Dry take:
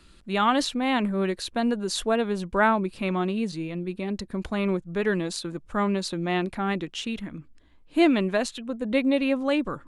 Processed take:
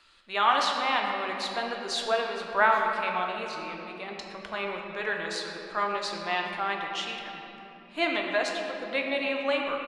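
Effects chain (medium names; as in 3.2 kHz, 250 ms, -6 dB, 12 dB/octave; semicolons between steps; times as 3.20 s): three-band isolator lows -22 dB, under 580 Hz, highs -14 dB, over 6.2 kHz; speakerphone echo 120 ms, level -13 dB; simulated room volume 190 m³, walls hard, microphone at 0.42 m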